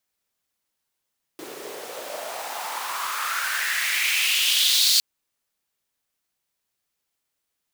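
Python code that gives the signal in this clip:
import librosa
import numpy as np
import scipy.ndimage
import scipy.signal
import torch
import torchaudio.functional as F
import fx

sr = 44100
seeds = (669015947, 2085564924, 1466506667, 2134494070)

y = fx.riser_noise(sr, seeds[0], length_s=3.61, colour='pink', kind='highpass', start_hz=340.0, end_hz=4400.0, q=3.9, swell_db=22.5, law='exponential')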